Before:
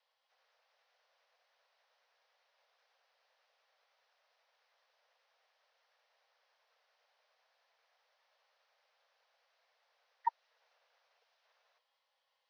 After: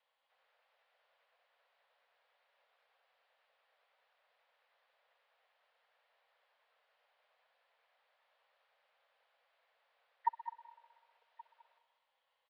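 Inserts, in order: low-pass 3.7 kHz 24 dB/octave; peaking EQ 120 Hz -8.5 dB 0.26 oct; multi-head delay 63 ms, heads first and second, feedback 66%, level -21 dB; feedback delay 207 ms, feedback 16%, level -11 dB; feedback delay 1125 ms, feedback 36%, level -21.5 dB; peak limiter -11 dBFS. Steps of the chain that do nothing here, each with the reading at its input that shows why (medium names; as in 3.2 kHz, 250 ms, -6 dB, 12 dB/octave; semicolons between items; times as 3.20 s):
peaking EQ 120 Hz: input has nothing below 510 Hz; peak limiter -11 dBFS: peak at its input -20.0 dBFS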